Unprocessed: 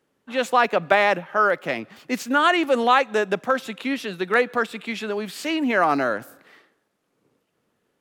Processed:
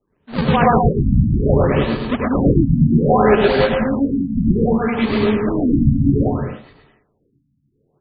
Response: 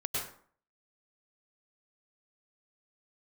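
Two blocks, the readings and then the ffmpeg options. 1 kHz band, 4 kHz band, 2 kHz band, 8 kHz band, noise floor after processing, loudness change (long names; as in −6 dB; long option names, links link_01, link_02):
+0.5 dB, −1.0 dB, −4.0 dB, below −40 dB, −65 dBFS, +5.5 dB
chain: -filter_complex "[0:a]adynamicequalizer=threshold=0.00794:dfrequency=230:dqfactor=3.3:tfrequency=230:tqfactor=3.3:attack=5:release=100:ratio=0.375:range=3.5:mode=boostabove:tftype=bell,bandreject=frequency=1300:width=5.9,acrusher=samples=37:mix=1:aa=0.000001:lfo=1:lforange=59.2:lforate=3,aecho=1:1:130|214.5|269.4|305.1|328.3:0.631|0.398|0.251|0.158|0.1[link_01];[1:a]atrim=start_sample=2205,afade=type=out:start_time=0.17:duration=0.01,atrim=end_sample=7938[link_02];[link_01][link_02]afir=irnorm=-1:irlink=0,afftfilt=real='re*lt(b*sr/1024,270*pow(4900/270,0.5+0.5*sin(2*PI*0.63*pts/sr)))':imag='im*lt(b*sr/1024,270*pow(4900/270,0.5+0.5*sin(2*PI*0.63*pts/sr)))':win_size=1024:overlap=0.75,volume=2.5dB"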